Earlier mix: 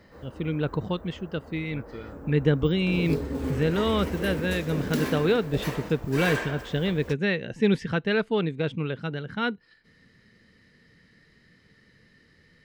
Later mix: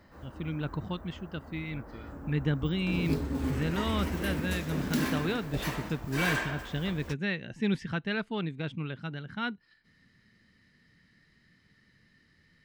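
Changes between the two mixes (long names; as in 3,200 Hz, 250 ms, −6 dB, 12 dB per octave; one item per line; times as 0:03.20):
speech −5.0 dB
master: add parametric band 470 Hz −9 dB 0.57 octaves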